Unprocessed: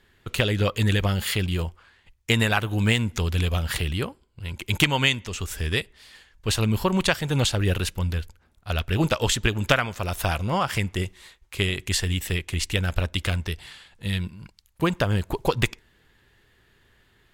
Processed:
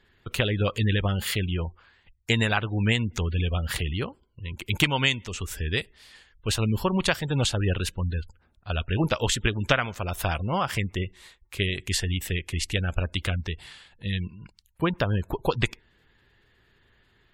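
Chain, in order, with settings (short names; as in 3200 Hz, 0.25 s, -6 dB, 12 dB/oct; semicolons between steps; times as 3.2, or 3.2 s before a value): spectral gate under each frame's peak -30 dB strong; gain -2 dB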